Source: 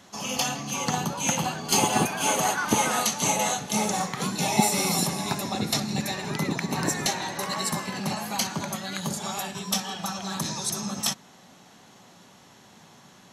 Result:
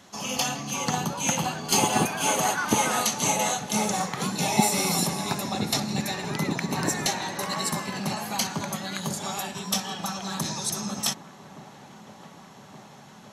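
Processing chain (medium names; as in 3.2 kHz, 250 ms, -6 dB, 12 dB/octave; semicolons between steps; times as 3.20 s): feedback echo behind a low-pass 1171 ms, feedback 78%, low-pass 1.7 kHz, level -18.5 dB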